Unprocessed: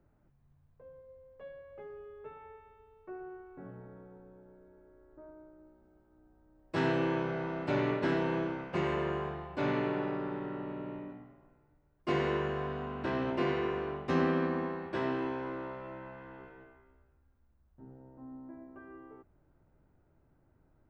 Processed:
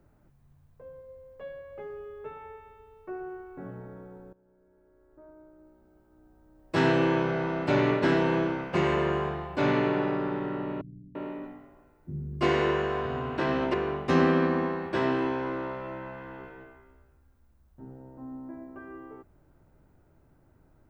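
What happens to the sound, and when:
0:04.33–0:06.77: fade in, from −18 dB
0:10.81–0:13.74: multiband delay without the direct sound lows, highs 340 ms, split 180 Hz
whole clip: high-shelf EQ 5,300 Hz +4.5 dB; level +6.5 dB

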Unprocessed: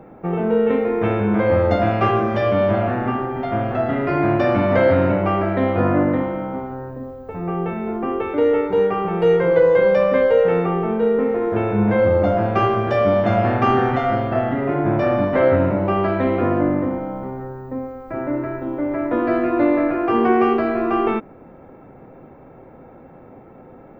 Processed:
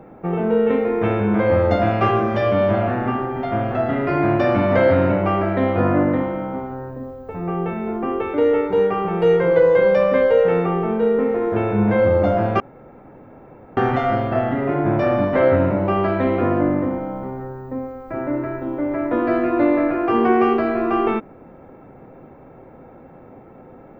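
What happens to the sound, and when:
0:12.60–0:13.77: fill with room tone

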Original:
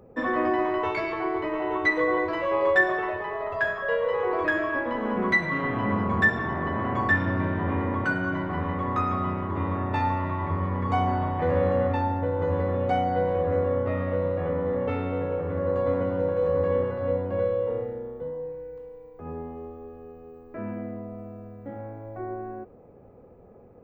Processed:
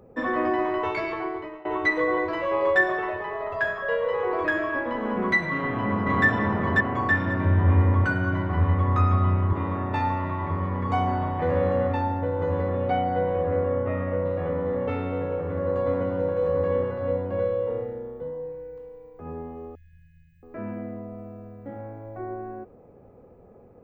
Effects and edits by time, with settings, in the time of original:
0:01.13–0:01.65: fade out, to −20.5 dB
0:05.52–0:06.26: delay throw 540 ms, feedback 15%, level −0.5 dB
0:07.45–0:09.53: parametric band 89 Hz +13.5 dB 0.59 octaves
0:12.69–0:14.24: low-pass filter 4,600 Hz → 2,700 Hz 24 dB per octave
0:19.75–0:20.43: linear-phase brick-wall band-stop 200–1,600 Hz

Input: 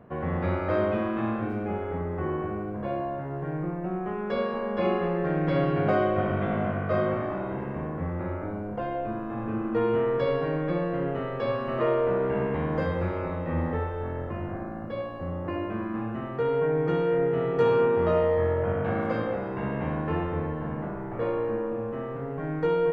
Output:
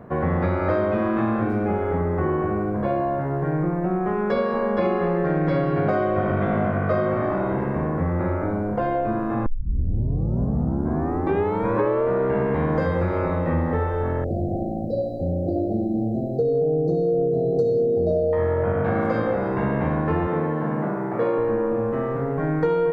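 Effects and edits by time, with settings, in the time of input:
0:09.46: tape start 2.64 s
0:14.24–0:18.33: linear-phase brick-wall band-stop 790–3,800 Hz
0:20.27–0:21.38: high-pass filter 140 Hz 24 dB per octave
whole clip: parametric band 2,900 Hz −8 dB 0.48 octaves; downward compressor, threshold −27 dBFS; level +9 dB

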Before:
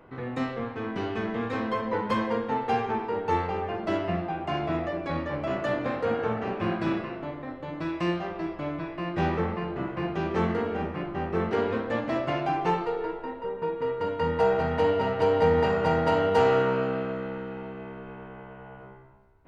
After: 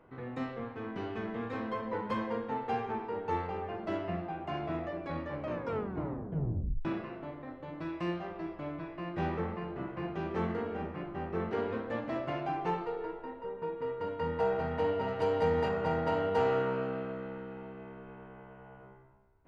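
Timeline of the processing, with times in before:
0:05.39: tape stop 1.46 s
0:15.08–0:15.69: high-shelf EQ 5,200 Hz +10.5 dB
whole clip: high-shelf EQ 3,700 Hz −6.5 dB; level −7 dB

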